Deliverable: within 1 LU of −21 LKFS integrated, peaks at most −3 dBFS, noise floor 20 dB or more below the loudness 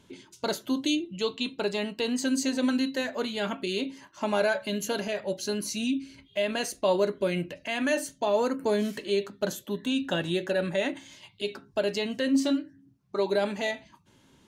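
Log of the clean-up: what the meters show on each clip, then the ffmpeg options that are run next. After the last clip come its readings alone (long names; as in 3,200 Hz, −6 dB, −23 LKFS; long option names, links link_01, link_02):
integrated loudness −29.0 LKFS; sample peak −12.5 dBFS; target loudness −21.0 LKFS
→ -af "volume=8dB"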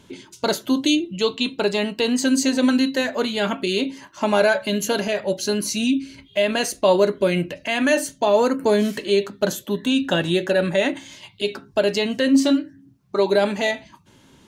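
integrated loudness −21.0 LKFS; sample peak −4.5 dBFS; background noise floor −53 dBFS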